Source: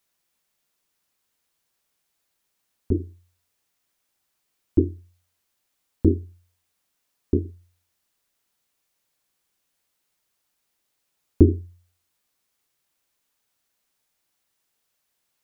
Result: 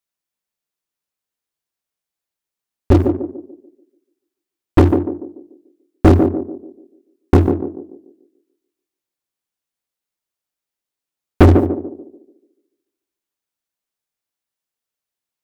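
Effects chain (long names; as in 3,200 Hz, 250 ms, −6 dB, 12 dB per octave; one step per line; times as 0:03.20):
leveller curve on the samples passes 5
on a send: feedback echo with a band-pass in the loop 145 ms, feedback 43%, band-pass 370 Hz, level −3.5 dB
on the sum: level −1 dB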